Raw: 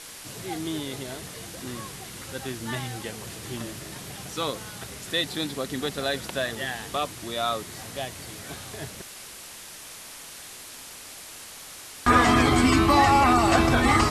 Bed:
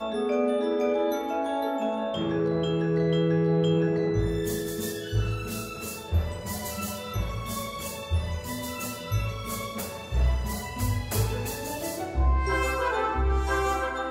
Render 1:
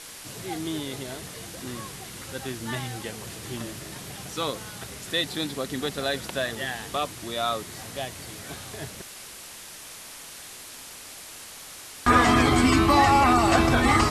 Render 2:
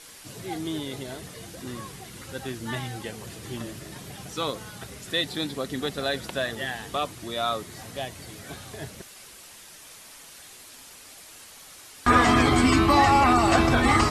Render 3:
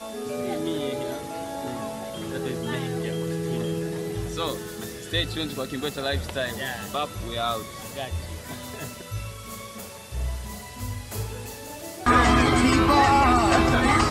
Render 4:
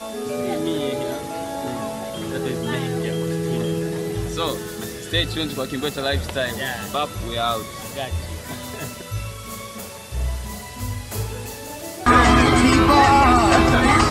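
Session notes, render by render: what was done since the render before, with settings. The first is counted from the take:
no processing that can be heard
broadband denoise 6 dB, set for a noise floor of −43 dBFS
mix in bed −5.5 dB
level +4.5 dB

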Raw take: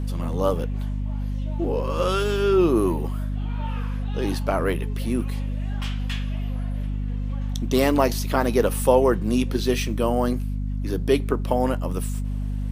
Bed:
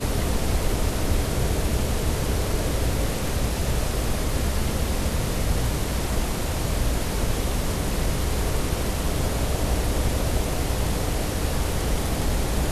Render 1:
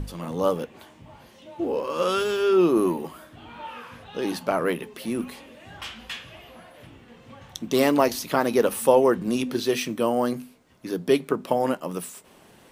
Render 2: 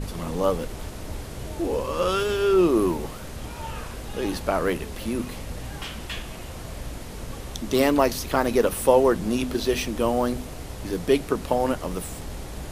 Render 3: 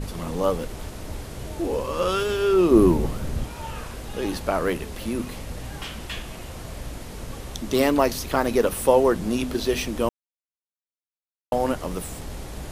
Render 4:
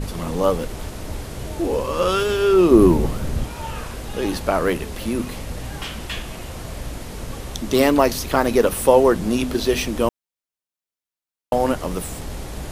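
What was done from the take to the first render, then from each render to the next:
mains-hum notches 50/100/150/200/250 Hz
mix in bed −11.5 dB
0:02.71–0:03.44: low-shelf EQ 390 Hz +10.5 dB; 0:10.09–0:11.52: silence
level +4 dB; brickwall limiter −2 dBFS, peak gain reduction 2 dB

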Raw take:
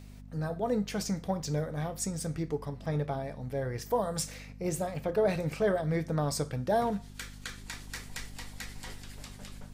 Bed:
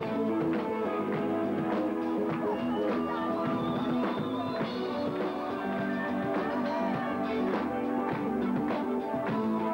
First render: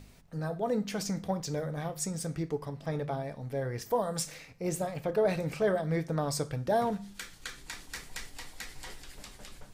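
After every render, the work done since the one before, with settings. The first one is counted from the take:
hum removal 50 Hz, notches 5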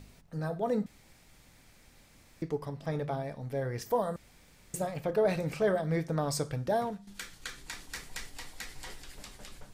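0:00.86–0:02.42: fill with room tone
0:04.16–0:04.74: fill with room tone
0:06.64–0:07.07: fade out, to −12.5 dB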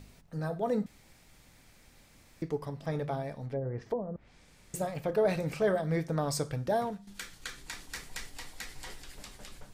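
0:03.45–0:04.75: treble cut that deepens with the level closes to 410 Hz, closed at −28 dBFS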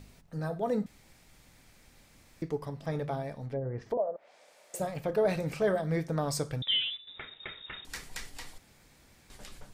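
0:03.97–0:04.80: high-pass with resonance 600 Hz, resonance Q 4.5
0:06.62–0:07.85: voice inversion scrambler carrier 3,700 Hz
0:08.58–0:09.30: fill with room tone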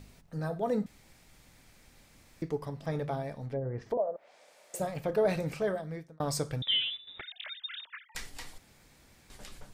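0:05.41–0:06.20: fade out
0:07.21–0:08.15: three sine waves on the formant tracks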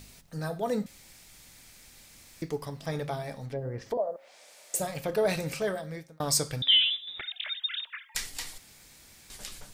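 high-shelf EQ 2,400 Hz +12 dB
hum removal 269.9 Hz, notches 19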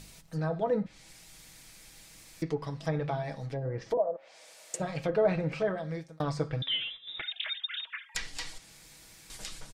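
comb filter 6.2 ms, depth 44%
treble cut that deepens with the level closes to 1,700 Hz, closed at −25.5 dBFS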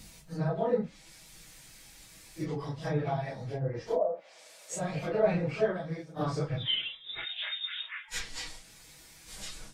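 random phases in long frames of 100 ms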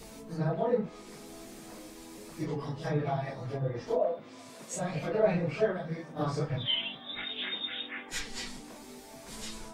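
mix in bed −18.5 dB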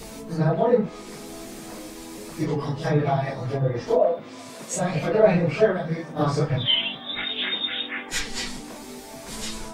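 level +9 dB

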